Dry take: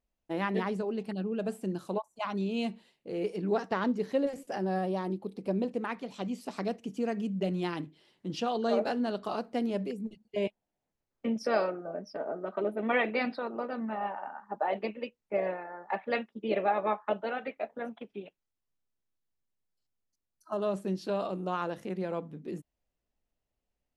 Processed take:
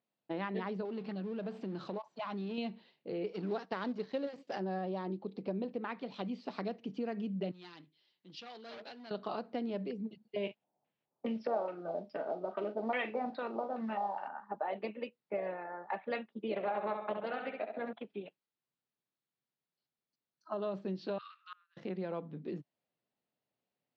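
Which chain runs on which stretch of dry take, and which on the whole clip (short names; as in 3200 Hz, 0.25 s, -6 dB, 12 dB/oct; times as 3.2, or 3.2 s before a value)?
0.85–2.58 G.711 law mismatch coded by mu + compressor 2.5:1, threshold -36 dBFS
3.33–4.6 G.711 law mismatch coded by A + high shelf 4400 Hz +11 dB
7.51–9.11 hard clip -28 dBFS + pre-emphasis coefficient 0.9
10.43–14.28 LFO low-pass square 2.4 Hz 840–3000 Hz + doubler 40 ms -12 dB + modulation noise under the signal 31 dB
16.54–17.93 feedback echo 67 ms, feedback 44%, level -6 dB + Doppler distortion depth 0.17 ms
21.18–21.77 steep high-pass 1200 Hz 72 dB/oct + high shelf 2900 Hz -5 dB + flipped gate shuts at -37 dBFS, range -31 dB
whole clip: elliptic band-pass 130–4400 Hz, stop band 40 dB; compressor 2.5:1, threshold -36 dBFS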